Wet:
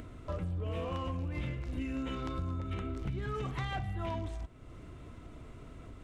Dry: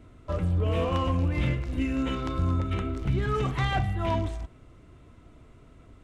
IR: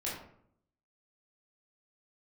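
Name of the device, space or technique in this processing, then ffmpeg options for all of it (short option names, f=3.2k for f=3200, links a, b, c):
upward and downward compression: -af "acompressor=mode=upward:threshold=-34dB:ratio=2.5,acompressor=threshold=-28dB:ratio=6,volume=-4.5dB"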